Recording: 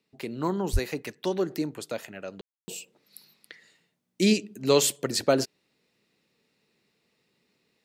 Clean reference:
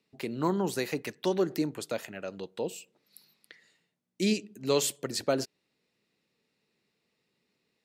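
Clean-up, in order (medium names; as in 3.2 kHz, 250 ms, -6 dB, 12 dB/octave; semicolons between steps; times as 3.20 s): de-plosive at 0.72 s; room tone fill 2.41–2.68 s; gain correction -5.5 dB, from 2.44 s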